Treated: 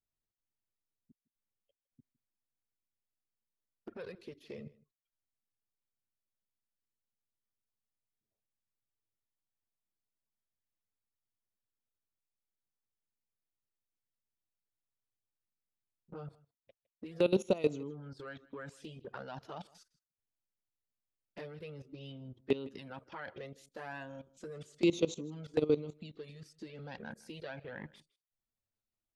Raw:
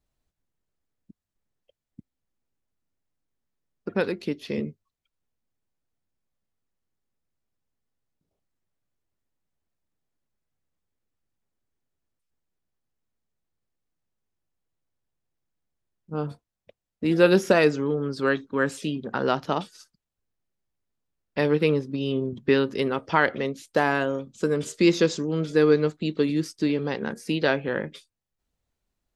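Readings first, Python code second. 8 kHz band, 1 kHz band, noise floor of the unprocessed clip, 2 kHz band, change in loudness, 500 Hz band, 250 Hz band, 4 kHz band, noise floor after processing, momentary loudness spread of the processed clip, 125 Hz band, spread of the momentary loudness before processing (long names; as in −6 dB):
−13.5 dB, −20.0 dB, below −85 dBFS, −20.0 dB, −14.0 dB, −13.5 dB, −14.0 dB, −15.0 dB, below −85 dBFS, 19 LU, −15.0 dB, 12 LU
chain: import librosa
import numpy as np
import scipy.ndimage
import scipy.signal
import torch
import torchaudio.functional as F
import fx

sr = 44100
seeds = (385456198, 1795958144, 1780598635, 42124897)

p1 = fx.level_steps(x, sr, step_db=17)
p2 = fx.env_flanger(p1, sr, rest_ms=9.2, full_db=-25.0)
p3 = p2 + fx.echo_single(p2, sr, ms=159, db=-22.0, dry=0)
y = p3 * librosa.db_to_amplitude(-6.5)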